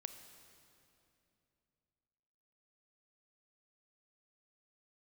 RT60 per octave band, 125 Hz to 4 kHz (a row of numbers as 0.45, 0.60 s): 3.4, 3.3, 3.0, 2.6, 2.5, 2.3 s